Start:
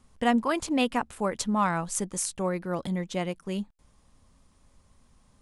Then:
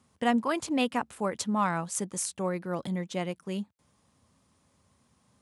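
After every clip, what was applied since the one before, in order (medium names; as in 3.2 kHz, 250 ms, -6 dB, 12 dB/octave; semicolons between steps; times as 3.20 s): high-pass 85 Hz 24 dB/octave; trim -2 dB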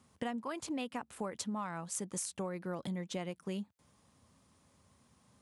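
compression 12:1, threshold -35 dBFS, peak gain reduction 15 dB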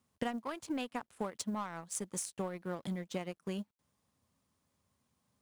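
companding laws mixed up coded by A; upward expansion 1.5:1, over -51 dBFS; trim +4.5 dB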